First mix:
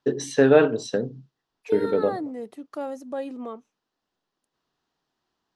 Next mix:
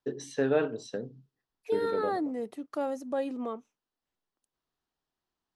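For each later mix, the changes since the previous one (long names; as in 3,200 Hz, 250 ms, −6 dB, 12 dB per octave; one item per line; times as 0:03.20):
first voice −10.5 dB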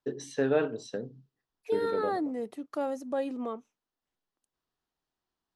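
nothing changed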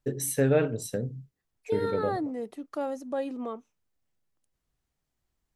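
first voice: remove loudspeaker in its box 280–5,200 Hz, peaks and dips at 550 Hz −5 dB, 1,000 Hz +3 dB, 2,200 Hz −9 dB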